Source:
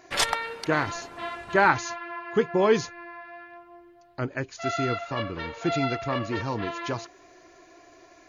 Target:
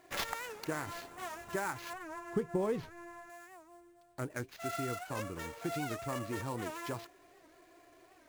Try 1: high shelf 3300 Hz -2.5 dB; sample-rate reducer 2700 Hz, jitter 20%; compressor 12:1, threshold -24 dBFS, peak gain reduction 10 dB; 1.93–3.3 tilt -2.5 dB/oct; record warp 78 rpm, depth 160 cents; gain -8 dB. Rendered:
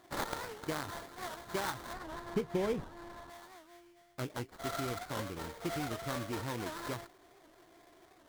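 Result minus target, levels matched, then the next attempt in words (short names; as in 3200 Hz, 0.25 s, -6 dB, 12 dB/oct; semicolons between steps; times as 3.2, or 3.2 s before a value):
sample-rate reducer: distortion +9 dB
high shelf 3300 Hz -2.5 dB; sample-rate reducer 8800 Hz, jitter 20%; compressor 12:1, threshold -24 dBFS, peak gain reduction 10 dB; 1.93–3.3 tilt -2.5 dB/oct; record warp 78 rpm, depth 160 cents; gain -8 dB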